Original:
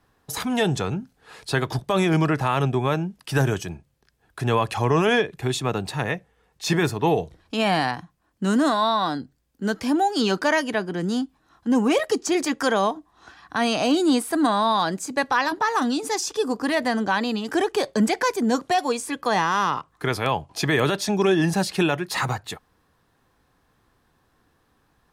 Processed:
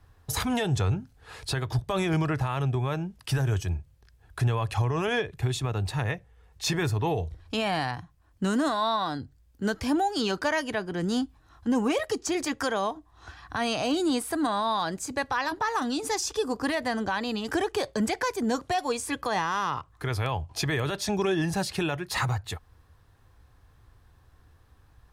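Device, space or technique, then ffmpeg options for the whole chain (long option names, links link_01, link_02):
car stereo with a boomy subwoofer: -af "lowshelf=frequency=130:width_type=q:width=1.5:gain=12,alimiter=limit=-17.5dB:level=0:latency=1:release=420"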